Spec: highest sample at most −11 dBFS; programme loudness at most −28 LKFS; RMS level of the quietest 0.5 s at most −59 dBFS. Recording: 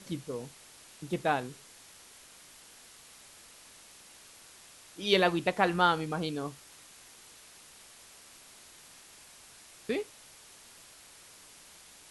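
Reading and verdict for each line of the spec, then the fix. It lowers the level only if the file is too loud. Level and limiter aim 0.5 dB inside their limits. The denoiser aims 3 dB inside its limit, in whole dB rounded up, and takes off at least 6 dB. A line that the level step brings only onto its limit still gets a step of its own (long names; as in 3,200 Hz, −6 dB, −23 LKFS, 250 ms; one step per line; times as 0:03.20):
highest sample −10.0 dBFS: out of spec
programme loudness −30.5 LKFS: in spec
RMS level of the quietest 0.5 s −54 dBFS: out of spec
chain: broadband denoise 8 dB, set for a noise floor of −54 dBFS
brickwall limiter −11.5 dBFS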